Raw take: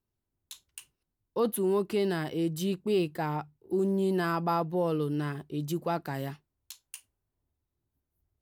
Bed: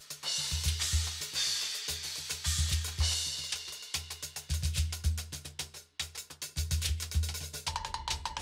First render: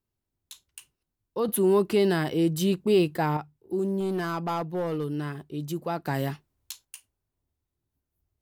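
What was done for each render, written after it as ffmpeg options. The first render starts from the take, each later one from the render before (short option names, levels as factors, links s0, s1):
-filter_complex "[0:a]asettb=1/sr,asplit=3[s0][s1][s2];[s0]atrim=end=1.484[s3];[s1]atrim=start=1.48:end=3.37,asetpts=PTS-STARTPTS,afade=t=in:d=0.004:c=qsin,afade=t=out:st=1.886:d=0.004:c=qsin,acontrast=48[s4];[s2]atrim=start=3.366[s5];[s3][s4]acrossfade=d=0.004:c1=hsin:c2=qsin[s6];[s6][s5]acrossfade=d=0.004:c1=qsin:c2=hsin,asettb=1/sr,asplit=3[s7][s8][s9];[s7]atrim=end=4.004[s10];[s8]atrim=start=4:end=5.04,asetpts=PTS-STARTPTS,afade=t=in:d=0.004:c=qsin,afade=t=out:st=1.036:d=0.004:c=qsin,volume=15,asoftclip=hard,volume=0.0668[s11];[s9]atrim=start=5.036[s12];[s10][s11]acrossfade=d=0.004:c1=hsin:c2=qsin[s13];[s13][s12]acrossfade=d=0.004:c1=qsin:c2=hsin,asettb=1/sr,asplit=3[s14][s15][s16];[s14]atrim=end=6.064[s17];[s15]atrim=start=6.06:end=6.85,asetpts=PTS-STARTPTS,afade=t=in:d=0.004:c=qsin,afade=t=out:st=0.786:d=0.004:c=qsin,acontrast=66[s18];[s16]atrim=start=6.846[s19];[s17][s18]acrossfade=d=0.004:c1=hsin:c2=qsin[s20];[s20][s19]acrossfade=d=0.004:c1=qsin:c2=hsin"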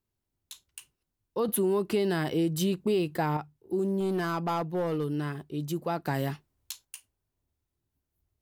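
-af "acompressor=threshold=0.0708:ratio=6"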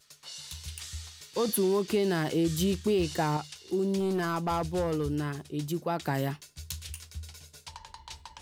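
-filter_complex "[1:a]volume=0.316[s0];[0:a][s0]amix=inputs=2:normalize=0"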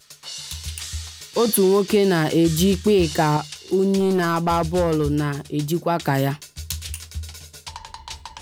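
-af "volume=2.99"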